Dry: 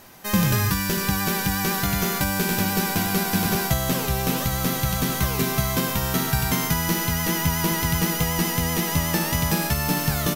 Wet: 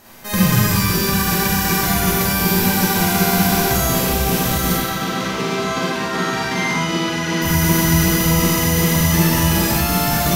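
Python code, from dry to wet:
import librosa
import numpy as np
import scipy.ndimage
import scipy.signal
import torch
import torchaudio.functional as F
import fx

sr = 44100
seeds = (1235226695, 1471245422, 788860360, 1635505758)

y = fx.bandpass_edges(x, sr, low_hz=220.0, high_hz=4400.0, at=(4.73, 7.42))
y = fx.rev_schroeder(y, sr, rt60_s=1.2, comb_ms=33, drr_db=-6.5)
y = y * 10.0 ** (-1.0 / 20.0)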